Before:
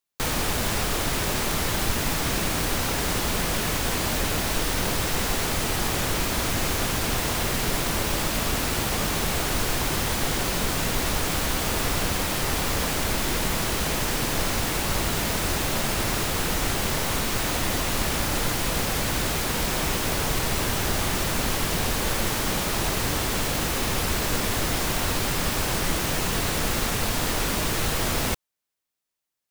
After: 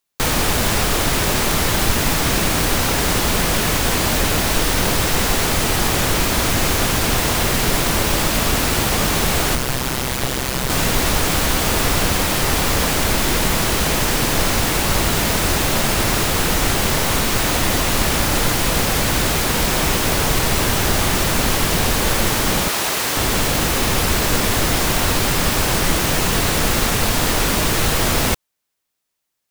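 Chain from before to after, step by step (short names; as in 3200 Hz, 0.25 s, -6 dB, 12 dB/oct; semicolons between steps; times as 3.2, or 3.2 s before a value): 9.55–10.7 AM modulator 130 Hz, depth 80%; 22.68–23.17 HPF 580 Hz 6 dB/oct; gain +7.5 dB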